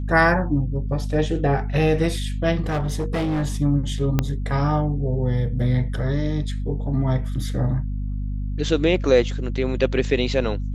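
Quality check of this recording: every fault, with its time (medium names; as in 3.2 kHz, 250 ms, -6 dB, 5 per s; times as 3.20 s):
hum 50 Hz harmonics 5 -26 dBFS
2.66–3.46 s: clipped -19.5 dBFS
4.19 s: pop -6 dBFS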